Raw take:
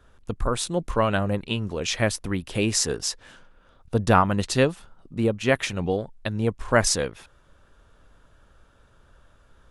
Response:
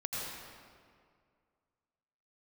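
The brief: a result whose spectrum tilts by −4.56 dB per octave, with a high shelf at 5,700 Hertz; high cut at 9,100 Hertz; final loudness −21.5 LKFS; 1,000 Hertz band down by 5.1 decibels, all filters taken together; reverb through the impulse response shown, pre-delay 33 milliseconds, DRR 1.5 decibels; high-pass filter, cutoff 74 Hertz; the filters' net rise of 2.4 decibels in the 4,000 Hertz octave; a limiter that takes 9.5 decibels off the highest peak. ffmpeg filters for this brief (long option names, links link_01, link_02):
-filter_complex "[0:a]highpass=74,lowpass=9100,equalizer=frequency=1000:width_type=o:gain=-7,equalizer=frequency=4000:width_type=o:gain=6.5,highshelf=frequency=5700:gain=-6,alimiter=limit=-16dB:level=0:latency=1,asplit=2[link_01][link_02];[1:a]atrim=start_sample=2205,adelay=33[link_03];[link_02][link_03]afir=irnorm=-1:irlink=0,volume=-5dB[link_04];[link_01][link_04]amix=inputs=2:normalize=0,volume=4.5dB"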